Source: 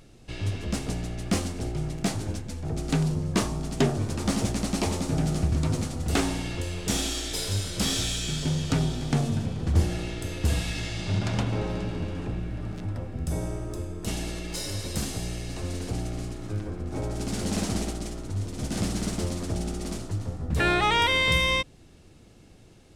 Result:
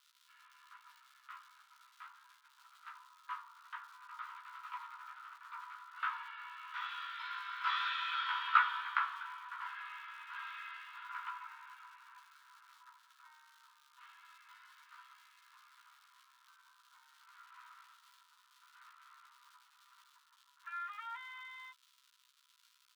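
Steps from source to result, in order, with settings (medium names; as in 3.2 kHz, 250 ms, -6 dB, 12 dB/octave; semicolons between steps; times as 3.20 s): Doppler pass-by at 8.45 s, 7 m/s, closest 3.3 m; low-pass 1.8 kHz 24 dB/octave; crackle 210 per s -63 dBFS; rippled Chebyshev high-pass 950 Hz, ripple 9 dB; doubling 15 ms -2.5 dB; trim +16 dB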